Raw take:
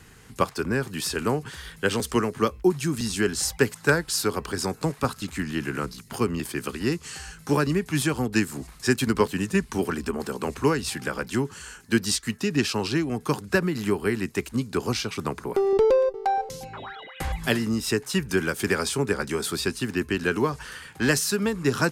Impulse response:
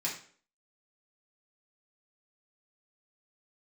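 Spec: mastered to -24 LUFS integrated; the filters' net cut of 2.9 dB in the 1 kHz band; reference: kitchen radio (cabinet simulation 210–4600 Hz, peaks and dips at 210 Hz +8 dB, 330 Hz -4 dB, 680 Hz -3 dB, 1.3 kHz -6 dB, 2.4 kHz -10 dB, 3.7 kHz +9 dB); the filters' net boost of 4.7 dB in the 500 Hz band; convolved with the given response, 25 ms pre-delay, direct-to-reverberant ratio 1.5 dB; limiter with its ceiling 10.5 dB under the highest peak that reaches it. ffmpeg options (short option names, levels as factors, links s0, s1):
-filter_complex "[0:a]equalizer=f=500:t=o:g=8,equalizer=f=1000:t=o:g=-3.5,alimiter=limit=0.211:level=0:latency=1,asplit=2[s0][s1];[1:a]atrim=start_sample=2205,adelay=25[s2];[s1][s2]afir=irnorm=-1:irlink=0,volume=0.501[s3];[s0][s3]amix=inputs=2:normalize=0,highpass=210,equalizer=f=210:t=q:w=4:g=8,equalizer=f=330:t=q:w=4:g=-4,equalizer=f=680:t=q:w=4:g=-3,equalizer=f=1300:t=q:w=4:g=-6,equalizer=f=2400:t=q:w=4:g=-10,equalizer=f=3700:t=q:w=4:g=9,lowpass=f=4600:w=0.5412,lowpass=f=4600:w=1.3066,volume=1.12"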